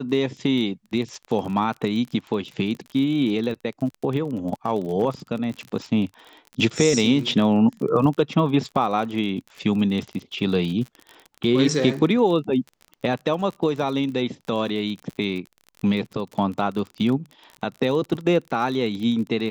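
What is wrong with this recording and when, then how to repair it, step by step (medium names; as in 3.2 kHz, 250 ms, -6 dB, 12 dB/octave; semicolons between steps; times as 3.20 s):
crackle 36 per s -30 dBFS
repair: de-click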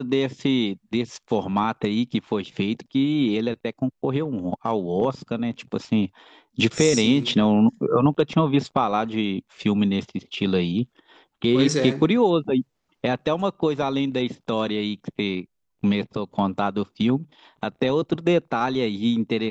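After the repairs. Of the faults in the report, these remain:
nothing left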